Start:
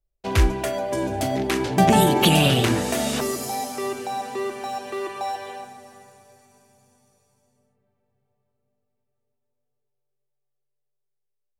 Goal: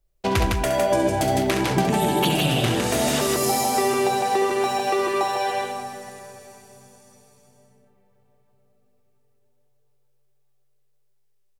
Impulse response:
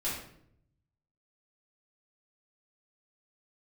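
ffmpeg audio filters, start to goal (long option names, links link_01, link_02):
-filter_complex "[0:a]acompressor=threshold=-27dB:ratio=16,asplit=2[link_01][link_02];[link_02]aecho=0:1:67.06|157.4:0.447|0.708[link_03];[link_01][link_03]amix=inputs=2:normalize=0,volume=8dB"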